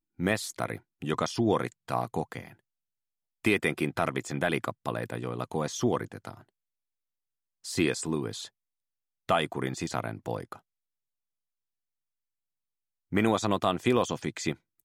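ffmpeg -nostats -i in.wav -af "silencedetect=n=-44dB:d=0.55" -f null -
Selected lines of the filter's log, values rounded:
silence_start: 2.52
silence_end: 3.45 | silence_duration: 0.92
silence_start: 6.41
silence_end: 7.65 | silence_duration: 1.24
silence_start: 8.47
silence_end: 9.29 | silence_duration: 0.82
silence_start: 10.56
silence_end: 13.12 | silence_duration: 2.56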